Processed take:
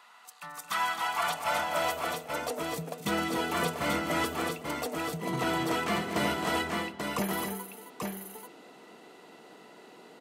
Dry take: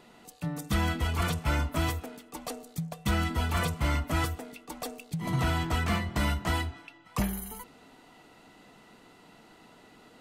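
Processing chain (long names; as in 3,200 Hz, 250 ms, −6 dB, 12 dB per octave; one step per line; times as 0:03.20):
low shelf with overshoot 240 Hz +6.5 dB, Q 1.5
multi-tap delay 219/265/836 ms −12.5/−8/−4.5 dB
high-pass filter sweep 1,100 Hz → 390 Hz, 0:00.58–0:02.83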